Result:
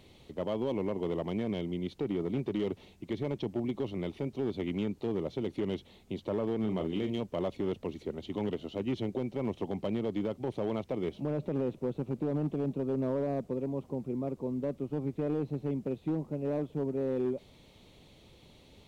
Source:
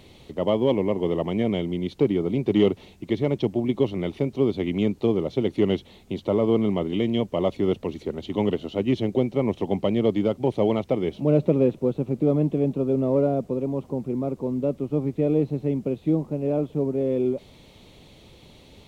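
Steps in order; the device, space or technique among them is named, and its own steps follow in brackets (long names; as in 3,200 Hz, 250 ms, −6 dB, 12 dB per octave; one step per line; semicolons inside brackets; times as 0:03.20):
0:06.60–0:07.18: double-tracking delay 37 ms −8.5 dB
limiter into clipper (brickwall limiter −15 dBFS, peak gain reduction 7.5 dB; hard clipping −17.5 dBFS, distortion −21 dB)
level −7.5 dB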